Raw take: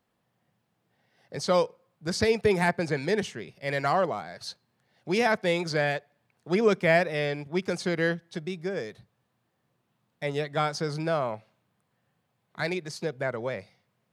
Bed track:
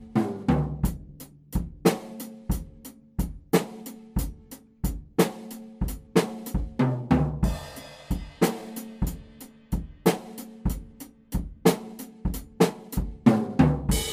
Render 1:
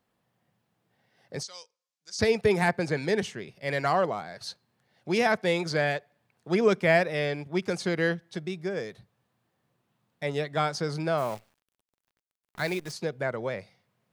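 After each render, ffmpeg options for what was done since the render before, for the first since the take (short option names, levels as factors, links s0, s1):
-filter_complex "[0:a]asettb=1/sr,asplit=3[s0][s1][s2];[s0]atrim=end=1.434[s3];[s1]atrim=start=1.43:end=2.19,asetpts=PTS-STARTPTS,afade=t=in:d=0.004:c=qsin,afade=t=out:st=0.756:d=0.004:c=qsin,bandpass=f=6100:t=q:w=2.6[s4];[s2]atrim=start=2.186[s5];[s3][s4]acrossfade=d=0.004:c1=hsin:c2=qsin[s6];[s6][s5]acrossfade=d=0.004:c1=qsin:c2=hsin,asplit=3[s7][s8][s9];[s7]afade=t=out:st=11.17:d=0.02[s10];[s8]acrusher=bits=8:dc=4:mix=0:aa=0.000001,afade=t=in:st=11.17:d=0.02,afade=t=out:st=12.91:d=0.02[s11];[s9]afade=t=in:st=12.91:d=0.02[s12];[s10][s11][s12]amix=inputs=3:normalize=0"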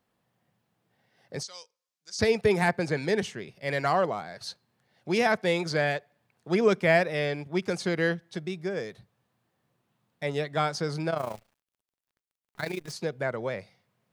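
-filter_complex "[0:a]asettb=1/sr,asplit=3[s0][s1][s2];[s0]atrim=end=11.104[s3];[s1]atrim=start=11.1:end=12.89,asetpts=PTS-STARTPTS,afade=t=in:d=0.004:c=qsin,afade=t=out:st=1.786:d=0.004:c=qsin,tremolo=f=28:d=0.788[s4];[s2]atrim=start=12.886[s5];[s3][s4]acrossfade=d=0.004:c1=hsin:c2=qsin[s6];[s6][s5]acrossfade=d=0.004:c1=qsin:c2=hsin"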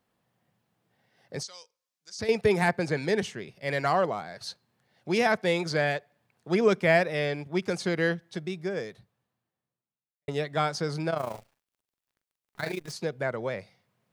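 -filter_complex "[0:a]asettb=1/sr,asplit=3[s0][s1][s2];[s0]atrim=end=1.484[s3];[s1]atrim=start=1.48:end=2.29,asetpts=PTS-STARTPTS,afade=t=in:d=0.004:c=qsin,afade=t=out:st=0.806:d=0.004:c=qsin,acompressor=threshold=0.00562:ratio=1.5:attack=3.2:release=140:knee=1:detection=peak[s4];[s2]atrim=start=2.286[s5];[s3][s4]acrossfade=d=0.004:c1=hsin:c2=qsin[s6];[s6][s5]acrossfade=d=0.004:c1=qsin:c2=hsin,asettb=1/sr,asplit=3[s7][s8][s9];[s7]atrim=end=11.304[s10];[s8]atrim=start=11.3:end=12.74,asetpts=PTS-STARTPTS,afade=t=in:d=0.004:c=qsin,afade=t=out:st=1.436:d=0.004:c=qsin,asplit=2[s11][s12];[s12]adelay=44,volume=0.376[s13];[s11][s13]amix=inputs=2:normalize=0,atrim=end_sample=63504[s14];[s9]atrim=start=12.736[s15];[s10][s14]acrossfade=d=0.004:c1=hsin:c2=qsin[s16];[s16][s15]acrossfade=d=0.004:c1=qsin:c2=hsin,asplit=2[s17][s18];[s17]atrim=end=10.28,asetpts=PTS-STARTPTS,afade=t=out:st=8.78:d=1.5:c=qua[s19];[s18]atrim=start=10.28,asetpts=PTS-STARTPTS,afade=t=in:d=0.004:c=hsin[s20];[s19][s20]concat=n=2:v=0:a=1"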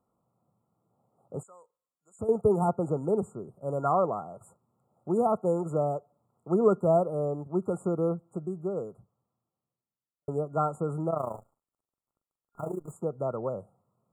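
-af "highshelf=f=7200:g=-11,afftfilt=real='re*(1-between(b*sr/4096,1400,6900))':imag='im*(1-between(b*sr/4096,1400,6900))':win_size=4096:overlap=0.75"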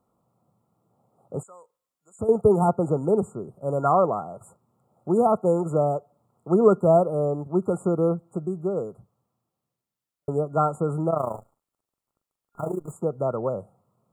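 -af "volume=1.88"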